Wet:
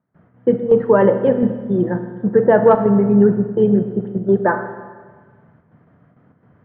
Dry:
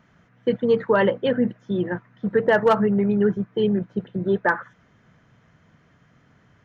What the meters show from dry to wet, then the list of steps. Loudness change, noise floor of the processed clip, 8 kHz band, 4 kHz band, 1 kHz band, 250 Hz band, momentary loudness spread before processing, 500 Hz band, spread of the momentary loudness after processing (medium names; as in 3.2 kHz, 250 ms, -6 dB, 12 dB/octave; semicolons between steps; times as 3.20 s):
+6.0 dB, -56 dBFS, no reading, under -10 dB, +4.5 dB, +6.5 dB, 9 LU, +6.5 dB, 10 LU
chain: high-pass 89 Hz 12 dB/octave; gate with hold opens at -49 dBFS; low-pass 1 kHz 12 dB/octave; square tremolo 1.4 Hz, depth 60%, duty 85%; Schroeder reverb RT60 1.5 s, combs from 25 ms, DRR 8 dB; trim +6.5 dB